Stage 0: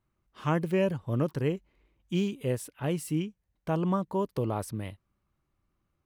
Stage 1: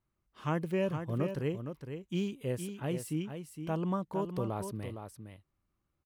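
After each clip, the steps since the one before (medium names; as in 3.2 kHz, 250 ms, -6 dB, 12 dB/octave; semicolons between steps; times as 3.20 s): delay 462 ms -8 dB; trim -5 dB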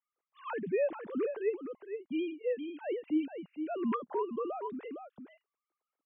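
formants replaced by sine waves; distance through air 95 m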